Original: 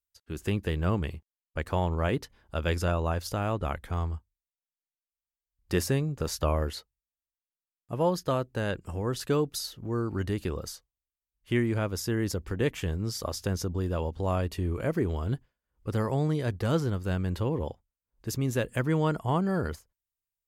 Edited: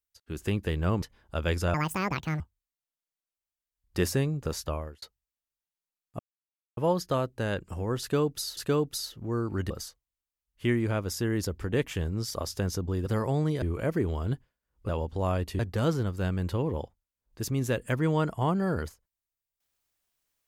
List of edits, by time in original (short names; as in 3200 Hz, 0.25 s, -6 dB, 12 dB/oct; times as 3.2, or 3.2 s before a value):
1.02–2.22 cut
2.94–4.15 speed 183%
6.19–6.77 fade out
7.94 insert silence 0.58 s
9.18–9.74 loop, 2 plays
10.31–10.57 cut
13.93–14.63 swap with 15.9–16.46